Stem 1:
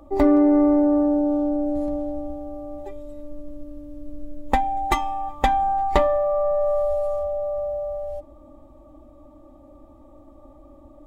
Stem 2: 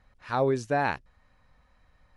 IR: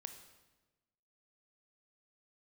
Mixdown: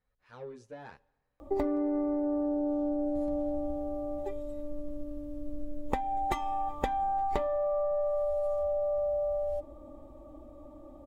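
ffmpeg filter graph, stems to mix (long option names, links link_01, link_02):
-filter_complex "[0:a]adelay=1400,volume=-2.5dB[link_01];[1:a]asoftclip=type=tanh:threshold=-20dB,asplit=2[link_02][link_03];[link_03]adelay=9.1,afreqshift=1.9[link_04];[link_02][link_04]amix=inputs=2:normalize=1,volume=-18dB,asplit=2[link_05][link_06];[link_06]volume=-10dB[link_07];[2:a]atrim=start_sample=2205[link_08];[link_07][link_08]afir=irnorm=-1:irlink=0[link_09];[link_01][link_05][link_09]amix=inputs=3:normalize=0,equalizer=frequency=460:width=3.3:gain=8,acompressor=threshold=-27dB:ratio=10"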